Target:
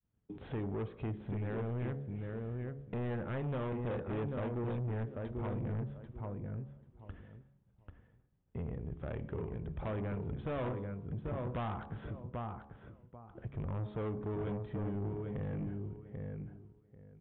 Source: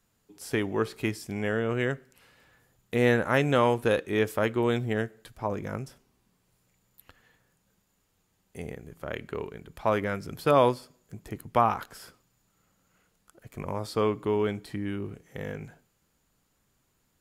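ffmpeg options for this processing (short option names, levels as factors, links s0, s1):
-filter_complex "[0:a]highpass=49,aemphasis=mode=reproduction:type=bsi,bandreject=f=70.1:t=h:w=4,bandreject=f=140.2:t=h:w=4,bandreject=f=210.3:t=h:w=4,bandreject=f=280.4:t=h:w=4,bandreject=f=350.5:t=h:w=4,bandreject=f=420.6:t=h:w=4,bandreject=f=490.7:t=h:w=4,bandreject=f=560.8:t=h:w=4,bandreject=f=630.9:t=h:w=4,bandreject=f=701:t=h:w=4,bandreject=f=771.1:t=h:w=4,bandreject=f=841.2:t=h:w=4,bandreject=f=911.3:t=h:w=4,bandreject=f=981.4:t=h:w=4,bandreject=f=1051.5:t=h:w=4,bandreject=f=1121.6:t=h:w=4,bandreject=f=1191.7:t=h:w=4,agate=range=0.0224:threshold=0.002:ratio=3:detection=peak,tiltshelf=f=900:g=3.5,acompressor=threshold=0.00708:ratio=2,asplit=2[s0][s1];[s1]adelay=790,lowpass=f=2200:p=1,volume=0.501,asplit=2[s2][s3];[s3]adelay=790,lowpass=f=2200:p=1,volume=0.17,asplit=2[s4][s5];[s5]adelay=790,lowpass=f=2200:p=1,volume=0.17[s6];[s0][s2][s4][s6]amix=inputs=4:normalize=0,asoftclip=type=tanh:threshold=0.0158,aresample=8000,aresample=44100,volume=1.41"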